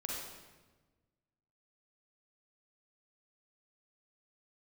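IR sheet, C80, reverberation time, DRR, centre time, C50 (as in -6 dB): 1.5 dB, 1.3 s, -3.5 dB, 84 ms, -1.5 dB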